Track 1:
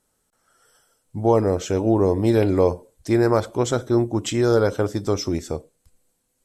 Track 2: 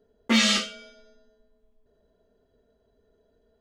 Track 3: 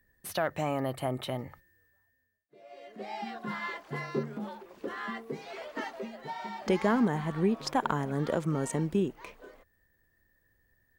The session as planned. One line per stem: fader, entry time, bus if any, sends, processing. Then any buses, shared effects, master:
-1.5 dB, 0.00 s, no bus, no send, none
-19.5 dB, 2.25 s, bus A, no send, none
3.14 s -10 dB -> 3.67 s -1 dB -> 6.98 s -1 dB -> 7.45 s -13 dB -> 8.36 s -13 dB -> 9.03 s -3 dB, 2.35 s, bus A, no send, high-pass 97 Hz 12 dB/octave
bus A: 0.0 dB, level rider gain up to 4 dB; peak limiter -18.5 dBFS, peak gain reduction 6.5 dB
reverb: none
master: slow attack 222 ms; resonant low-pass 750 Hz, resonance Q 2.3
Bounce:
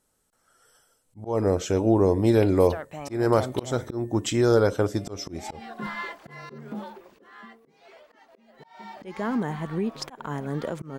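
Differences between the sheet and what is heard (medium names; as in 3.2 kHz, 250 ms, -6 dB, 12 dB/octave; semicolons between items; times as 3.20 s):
stem 2: muted; stem 3: missing high-pass 97 Hz 12 dB/octave; master: missing resonant low-pass 750 Hz, resonance Q 2.3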